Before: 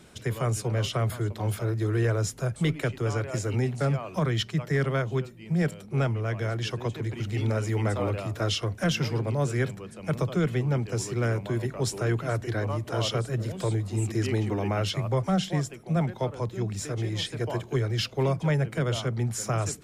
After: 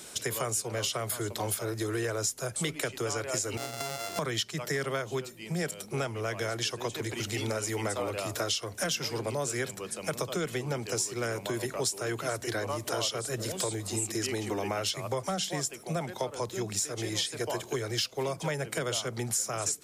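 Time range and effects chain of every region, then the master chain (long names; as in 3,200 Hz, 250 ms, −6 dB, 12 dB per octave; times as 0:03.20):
0:03.57–0:04.19: samples sorted by size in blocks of 64 samples + high-shelf EQ 8,800 Hz −11 dB + downward compressor, threshold −35 dBFS
whole clip: bass and treble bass −12 dB, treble +12 dB; downward compressor, threshold −33 dBFS; level +4.5 dB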